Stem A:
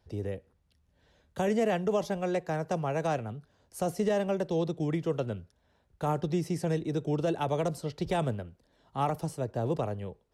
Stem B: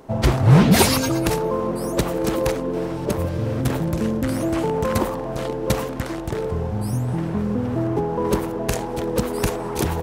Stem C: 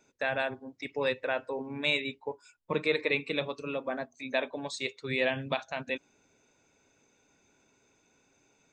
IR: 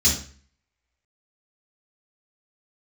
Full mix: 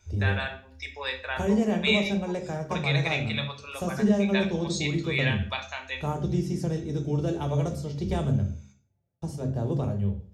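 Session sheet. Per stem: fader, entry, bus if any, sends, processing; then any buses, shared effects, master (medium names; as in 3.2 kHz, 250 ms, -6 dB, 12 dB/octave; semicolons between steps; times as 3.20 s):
-3.5 dB, 0.00 s, muted 8.54–9.22 s, send -17 dB, bass shelf 200 Hz +10.5 dB
mute
+3.0 dB, 0.00 s, send -18 dB, high-pass 930 Hz 12 dB/octave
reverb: on, RT60 0.45 s, pre-delay 3 ms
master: none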